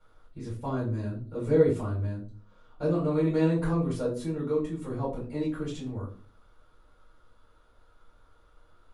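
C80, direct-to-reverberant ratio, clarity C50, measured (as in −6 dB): 11.5 dB, −8.5 dB, 5.5 dB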